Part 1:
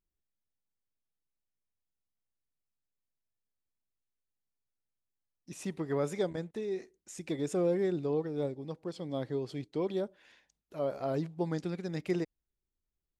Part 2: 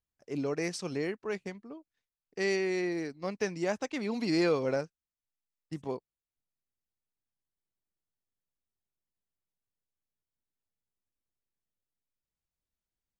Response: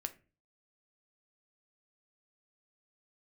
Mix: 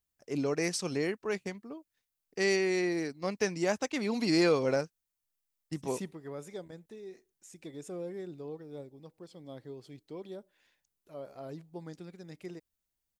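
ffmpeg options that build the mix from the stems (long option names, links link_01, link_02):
-filter_complex "[0:a]dynaudnorm=framelen=160:gausssize=13:maxgain=10dB,adelay=350,volume=-12.5dB[link_01];[1:a]volume=1.5dB,asplit=2[link_02][link_03];[link_03]apad=whole_len=597264[link_04];[link_01][link_04]sidechaingate=range=-8dB:threshold=-53dB:ratio=16:detection=peak[link_05];[link_05][link_02]amix=inputs=2:normalize=0,crystalizer=i=1:c=0"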